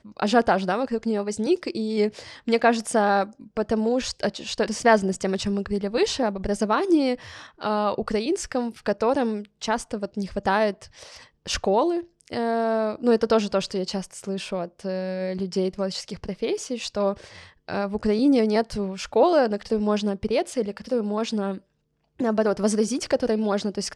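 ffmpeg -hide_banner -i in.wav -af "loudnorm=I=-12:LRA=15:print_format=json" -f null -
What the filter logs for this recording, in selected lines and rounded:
"input_i" : "-24.6",
"input_tp" : "-4.5",
"input_lra" : "3.1",
"input_thresh" : "-34.9",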